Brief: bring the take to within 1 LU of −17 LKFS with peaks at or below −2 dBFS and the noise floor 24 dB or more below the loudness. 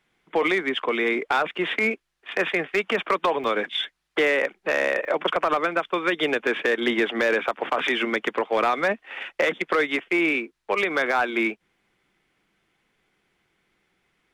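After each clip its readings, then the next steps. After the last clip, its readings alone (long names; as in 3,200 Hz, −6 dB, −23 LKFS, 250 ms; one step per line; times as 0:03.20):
share of clipped samples 0.5%; peaks flattened at −14.0 dBFS; number of dropouts 2; longest dropout 1.4 ms; integrated loudness −24.0 LKFS; sample peak −14.0 dBFS; target loudness −17.0 LKFS
→ clipped peaks rebuilt −14 dBFS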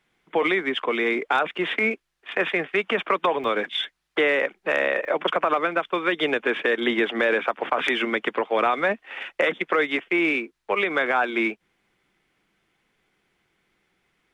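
share of clipped samples 0.0%; number of dropouts 2; longest dropout 1.4 ms
→ repair the gap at 0:03.44/0:05.05, 1.4 ms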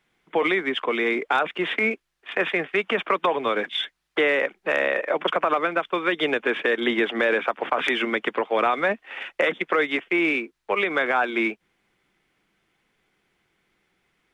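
number of dropouts 0; integrated loudness −23.5 LKFS; sample peak −6.0 dBFS; target loudness −17.0 LKFS
→ level +6.5 dB
brickwall limiter −2 dBFS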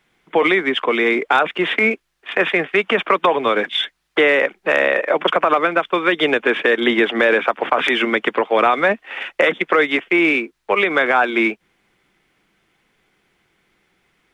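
integrated loudness −17.0 LKFS; sample peak −2.0 dBFS; background noise floor −68 dBFS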